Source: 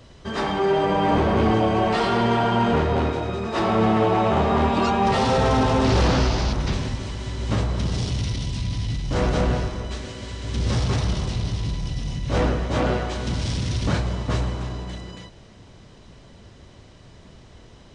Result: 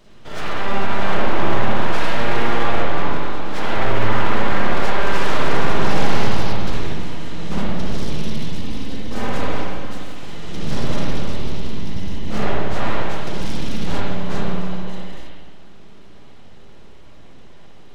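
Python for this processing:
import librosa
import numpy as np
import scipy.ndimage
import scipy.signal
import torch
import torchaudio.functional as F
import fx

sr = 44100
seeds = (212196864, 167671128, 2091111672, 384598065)

y = fx.lower_of_two(x, sr, delay_ms=3.9, at=(8.55, 10.16))
y = np.abs(y)
y = fx.rev_spring(y, sr, rt60_s=1.2, pass_ms=(55, 60), chirp_ms=25, drr_db=-4.5)
y = F.gain(torch.from_numpy(y), -3.0).numpy()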